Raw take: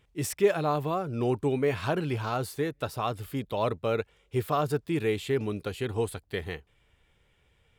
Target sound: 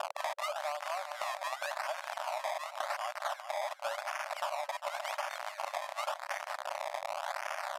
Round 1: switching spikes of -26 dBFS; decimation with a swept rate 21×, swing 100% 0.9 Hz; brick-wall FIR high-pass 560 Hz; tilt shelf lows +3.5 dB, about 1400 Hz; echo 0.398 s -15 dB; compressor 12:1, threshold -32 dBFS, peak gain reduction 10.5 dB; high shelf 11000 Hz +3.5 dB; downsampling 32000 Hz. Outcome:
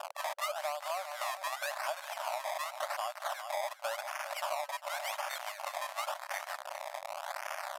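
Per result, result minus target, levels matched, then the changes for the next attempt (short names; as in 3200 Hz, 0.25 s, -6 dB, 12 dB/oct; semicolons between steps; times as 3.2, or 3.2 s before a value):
switching spikes: distortion -8 dB; 8000 Hz band +3.5 dB
change: switching spikes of -18 dBFS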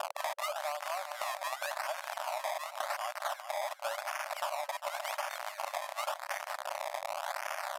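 8000 Hz band +3.0 dB
change: high shelf 11000 Hz -8.5 dB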